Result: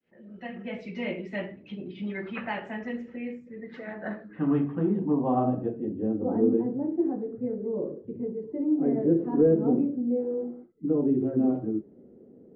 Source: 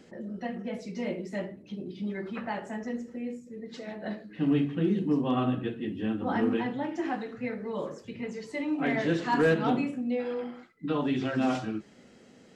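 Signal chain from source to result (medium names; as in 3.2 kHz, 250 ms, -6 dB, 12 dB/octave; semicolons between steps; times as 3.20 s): fade-in on the opening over 0.79 s; low-pass sweep 2.6 kHz -> 400 Hz, 3.07–6.56 s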